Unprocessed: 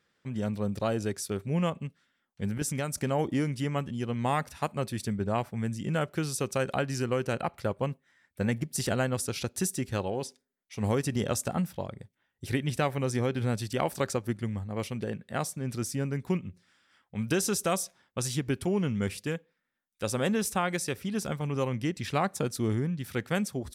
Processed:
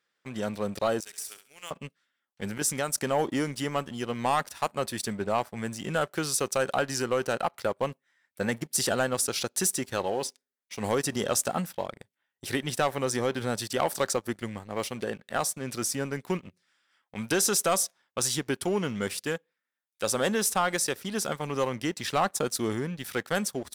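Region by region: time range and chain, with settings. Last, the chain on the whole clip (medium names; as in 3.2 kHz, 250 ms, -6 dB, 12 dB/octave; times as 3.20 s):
1.00–1.71 s: de-esser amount 80% + differentiator + flutter echo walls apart 11.5 m, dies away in 0.6 s
whole clip: high-pass 620 Hz 6 dB/octave; dynamic bell 2.4 kHz, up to -6 dB, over -52 dBFS, Q 2.7; waveshaping leveller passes 2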